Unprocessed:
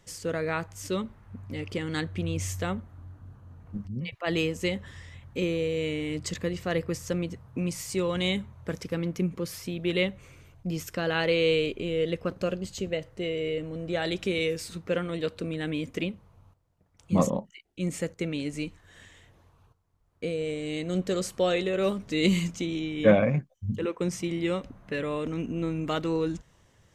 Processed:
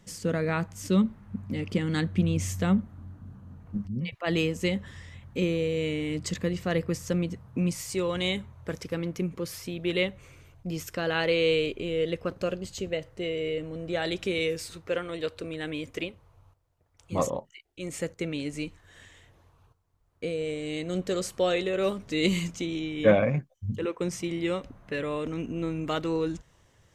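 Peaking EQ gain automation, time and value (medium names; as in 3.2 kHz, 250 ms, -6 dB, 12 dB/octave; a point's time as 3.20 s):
peaking EQ 200 Hz 0.68 oct
+12 dB
from 3.58 s +4.5 dB
from 7.73 s -3.5 dB
from 14.66 s -13.5 dB
from 17.99 s -3.5 dB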